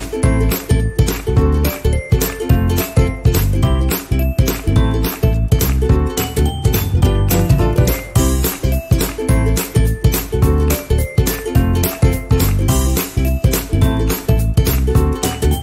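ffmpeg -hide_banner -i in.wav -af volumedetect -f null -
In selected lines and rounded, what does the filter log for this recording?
mean_volume: -14.2 dB
max_volume: -2.0 dB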